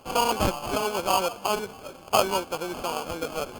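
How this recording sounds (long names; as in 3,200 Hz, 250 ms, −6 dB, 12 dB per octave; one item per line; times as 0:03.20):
aliases and images of a low sample rate 1,900 Hz, jitter 0%
Opus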